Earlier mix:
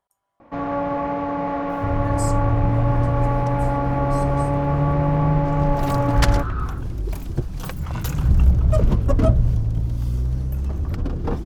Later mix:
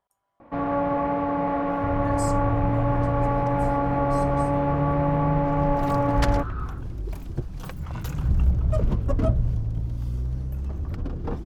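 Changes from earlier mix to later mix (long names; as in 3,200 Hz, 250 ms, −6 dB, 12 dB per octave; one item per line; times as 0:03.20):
first sound: add high-frequency loss of the air 94 metres
second sound −5.5 dB
master: add high-shelf EQ 4,500 Hz −5 dB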